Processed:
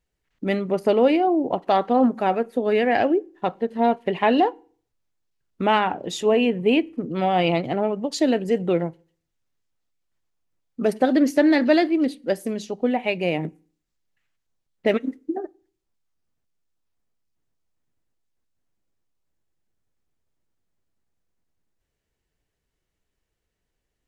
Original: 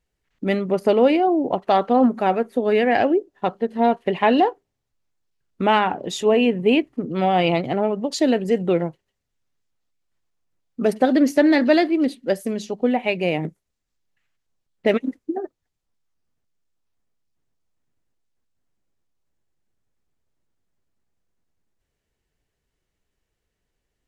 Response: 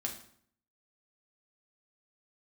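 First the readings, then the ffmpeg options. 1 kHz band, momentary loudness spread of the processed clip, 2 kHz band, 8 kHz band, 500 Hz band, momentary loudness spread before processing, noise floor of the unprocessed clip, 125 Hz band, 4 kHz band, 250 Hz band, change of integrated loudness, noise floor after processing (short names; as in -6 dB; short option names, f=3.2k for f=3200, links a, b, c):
-2.0 dB, 9 LU, -1.5 dB, -1.5 dB, -1.5 dB, 9 LU, -79 dBFS, -2.0 dB, -1.5 dB, -1.5 dB, -1.5 dB, -80 dBFS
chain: -filter_complex "[0:a]asplit=2[a][b];[1:a]atrim=start_sample=2205,asetrate=61740,aresample=44100[c];[b][c]afir=irnorm=-1:irlink=0,volume=-15.5dB[d];[a][d]amix=inputs=2:normalize=0,volume=-2.5dB"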